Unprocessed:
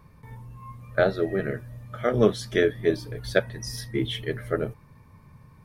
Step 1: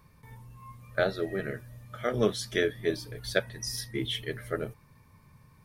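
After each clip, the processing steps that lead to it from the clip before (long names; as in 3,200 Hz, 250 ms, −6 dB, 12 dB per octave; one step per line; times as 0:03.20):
high-shelf EQ 2,200 Hz +9 dB
level −6.5 dB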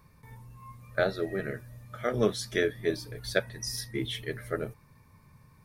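parametric band 3,100 Hz −5.5 dB 0.23 octaves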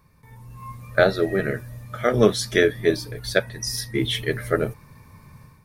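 automatic gain control gain up to 11 dB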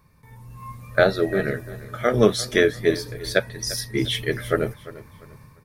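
repeating echo 346 ms, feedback 30%, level −17.5 dB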